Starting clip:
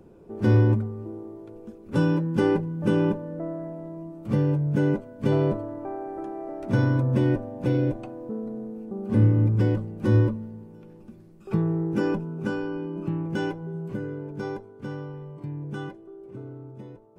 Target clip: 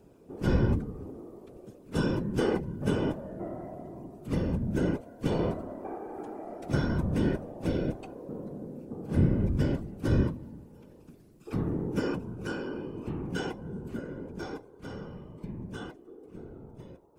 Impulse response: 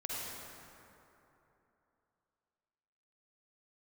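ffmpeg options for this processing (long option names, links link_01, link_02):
-af "highshelf=frequency=3000:gain=11,afftfilt=real='hypot(re,im)*cos(2*PI*random(0))':imag='hypot(re,im)*sin(2*PI*random(1))':win_size=512:overlap=0.75"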